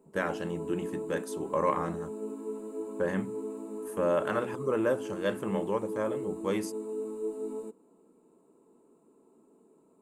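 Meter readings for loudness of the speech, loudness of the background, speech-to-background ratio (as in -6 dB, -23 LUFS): -32.5 LUFS, -38.5 LUFS, 6.0 dB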